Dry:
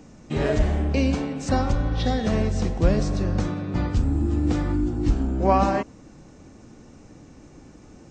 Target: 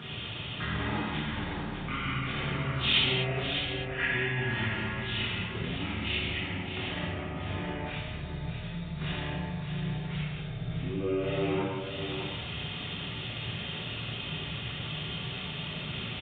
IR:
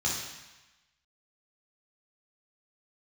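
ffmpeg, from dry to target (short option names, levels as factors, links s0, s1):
-filter_complex "[0:a]acompressor=threshold=0.0355:ratio=6,alimiter=level_in=2.51:limit=0.0631:level=0:latency=1:release=153,volume=0.398,highpass=260[s0];[1:a]atrim=start_sample=2205,atrim=end_sample=6174[s1];[s0][s1]afir=irnorm=-1:irlink=0,asetrate=22050,aresample=44100,equalizer=f=2200:w=0.64:g=13.5,aecho=1:1:607:0.398,volume=1.19"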